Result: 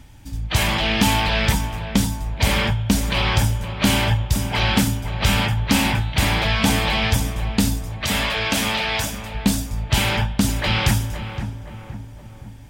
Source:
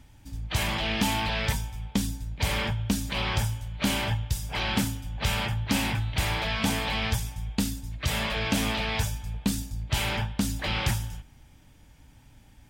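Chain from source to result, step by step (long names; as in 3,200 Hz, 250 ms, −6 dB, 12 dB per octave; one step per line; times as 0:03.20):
0:08.02–0:09.35: low-shelf EQ 290 Hz −11 dB
feedback echo with a low-pass in the loop 517 ms, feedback 52%, low-pass 1,500 Hz, level −9 dB
level +8 dB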